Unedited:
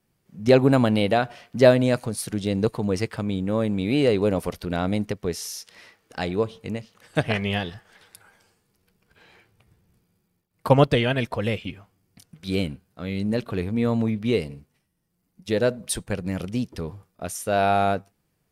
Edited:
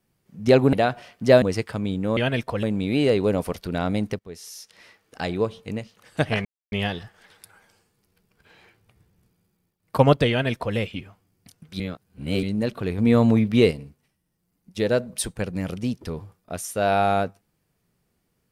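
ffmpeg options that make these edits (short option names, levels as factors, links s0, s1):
-filter_complex "[0:a]asplit=11[s0][s1][s2][s3][s4][s5][s6][s7][s8][s9][s10];[s0]atrim=end=0.732[s11];[s1]atrim=start=1.058:end=1.752[s12];[s2]atrim=start=2.858:end=3.612[s13];[s3]atrim=start=11.008:end=11.472[s14];[s4]atrim=start=3.608:end=5.17,asetpts=PTS-STARTPTS,afade=t=out:st=1.558:d=0.004:c=hsin:silence=0.11885[s15];[s5]atrim=start=5.17:end=7.43,asetpts=PTS-STARTPTS,afade=t=in:d=1.22:c=qsin:silence=0.11885,afade=t=out:st=2.256:d=0.004:c=hsin,apad=pad_dur=0.27[s16];[s6]atrim=start=7.43:end=12.512,asetpts=PTS-STARTPTS,afade=t=in:d=0.004:c=hsin[s17];[s7]atrim=start=12.508:end=13.142,asetpts=PTS-STARTPTS,areverse[s18];[s8]atrim=start=13.138:end=13.692[s19];[s9]atrim=start=13.688:end=14.422,asetpts=PTS-STARTPTS,volume=1.88[s20];[s10]atrim=start=14.418[s21];[s11][s12]acrossfade=d=0.004:c1=hsin:c2=hsin[s22];[s22][s13]acrossfade=d=0.004:c1=hsin:c2=hsin[s23];[s23][s14]acrossfade=d=0.004:c1=hsin:c2=hsin[s24];[s15][s16][s17]concat=n=3:v=0:a=1[s25];[s24][s25]acrossfade=d=0.004:c1=hsin:c2=hsin[s26];[s26][s18]acrossfade=d=0.004:c1=hsin:c2=hsin[s27];[s27][s19]acrossfade=d=0.004:c1=hsin:c2=hsin[s28];[s28][s20]acrossfade=d=0.004:c1=hsin:c2=hsin[s29];[s29][s21]acrossfade=d=0.004:c1=hsin:c2=hsin"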